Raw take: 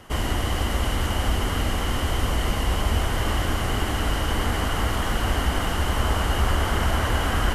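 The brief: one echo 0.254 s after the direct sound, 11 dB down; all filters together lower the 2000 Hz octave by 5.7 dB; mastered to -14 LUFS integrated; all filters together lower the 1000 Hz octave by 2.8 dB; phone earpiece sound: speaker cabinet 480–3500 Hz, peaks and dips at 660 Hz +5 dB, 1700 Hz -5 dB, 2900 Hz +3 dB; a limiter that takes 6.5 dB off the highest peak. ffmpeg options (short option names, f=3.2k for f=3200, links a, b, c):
-af "equalizer=f=1k:t=o:g=-3.5,equalizer=f=2k:t=o:g=-3.5,alimiter=limit=-16.5dB:level=0:latency=1,highpass=480,equalizer=f=660:t=q:w=4:g=5,equalizer=f=1.7k:t=q:w=4:g=-5,equalizer=f=2.9k:t=q:w=4:g=3,lowpass=f=3.5k:w=0.5412,lowpass=f=3.5k:w=1.3066,aecho=1:1:254:0.282,volume=18dB"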